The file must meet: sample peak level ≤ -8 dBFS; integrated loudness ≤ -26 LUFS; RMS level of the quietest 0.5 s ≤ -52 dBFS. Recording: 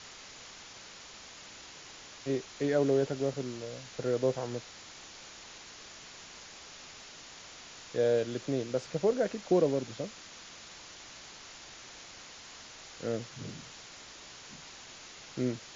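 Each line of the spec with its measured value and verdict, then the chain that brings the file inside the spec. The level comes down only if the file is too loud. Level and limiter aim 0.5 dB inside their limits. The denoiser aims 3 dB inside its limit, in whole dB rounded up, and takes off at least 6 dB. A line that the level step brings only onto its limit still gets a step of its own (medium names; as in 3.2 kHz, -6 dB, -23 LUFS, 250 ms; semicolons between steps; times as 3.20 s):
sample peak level -15.0 dBFS: pass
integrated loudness -32.5 LUFS: pass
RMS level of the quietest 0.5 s -50 dBFS: fail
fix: noise reduction 6 dB, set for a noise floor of -50 dBFS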